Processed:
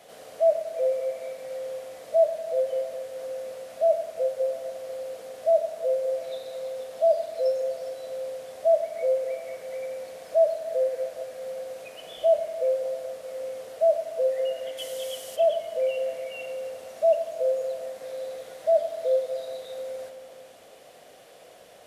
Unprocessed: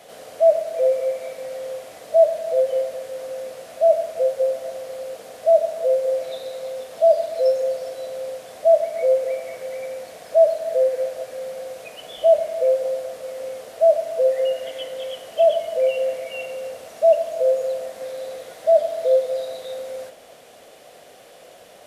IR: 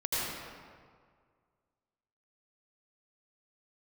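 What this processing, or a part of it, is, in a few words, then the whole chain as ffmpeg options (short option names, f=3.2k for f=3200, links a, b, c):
compressed reverb return: -filter_complex "[0:a]asplit=2[a][b];[1:a]atrim=start_sample=2205[c];[b][c]afir=irnorm=-1:irlink=0,acompressor=threshold=-19dB:ratio=6,volume=-14.5dB[d];[a][d]amix=inputs=2:normalize=0,asplit=3[e][f][g];[e]afade=t=out:st=14.77:d=0.02[h];[f]bass=f=250:g=1,treble=f=4k:g=14,afade=t=in:st=14.77:d=0.02,afade=t=out:st=15.35:d=0.02[i];[g]afade=t=in:st=15.35:d=0.02[j];[h][i][j]amix=inputs=3:normalize=0,volume=-6.5dB"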